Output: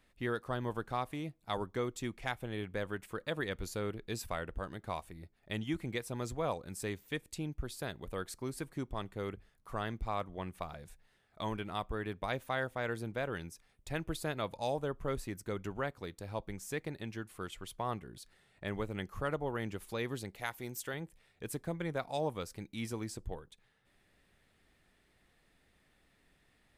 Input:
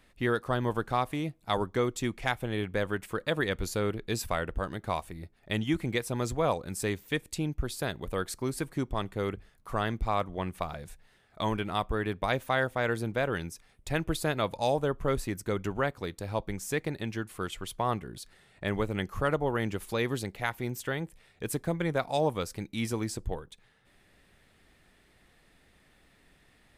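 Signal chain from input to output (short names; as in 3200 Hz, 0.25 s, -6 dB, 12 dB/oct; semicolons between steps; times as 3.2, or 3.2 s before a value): 20.35–20.94 tone controls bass -4 dB, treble +7 dB; gain -7.5 dB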